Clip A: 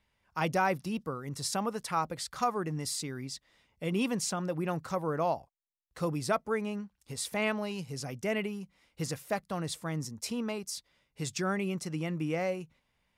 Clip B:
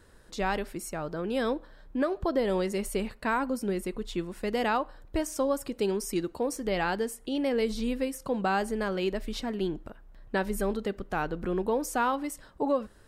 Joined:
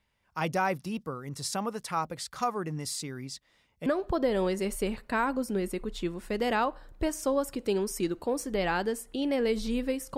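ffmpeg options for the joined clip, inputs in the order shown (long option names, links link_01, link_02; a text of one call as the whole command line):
ffmpeg -i cue0.wav -i cue1.wav -filter_complex "[0:a]apad=whole_dur=10.17,atrim=end=10.17,atrim=end=3.862[link_01];[1:a]atrim=start=1.988:end=8.3[link_02];[link_01][link_02]acrossfade=duration=0.004:curve1=hsin:curve2=hsin" out.wav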